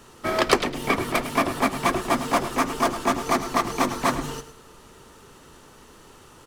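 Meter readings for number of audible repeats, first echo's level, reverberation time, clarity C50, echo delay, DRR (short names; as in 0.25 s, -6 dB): 2, -12.5 dB, none, none, 0.106 s, none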